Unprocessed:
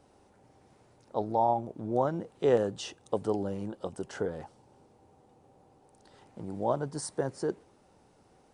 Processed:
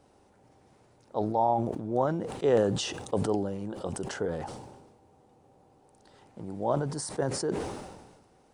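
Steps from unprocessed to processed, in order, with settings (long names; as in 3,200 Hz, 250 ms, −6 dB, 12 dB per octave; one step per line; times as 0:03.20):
level that may fall only so fast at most 44 dB per second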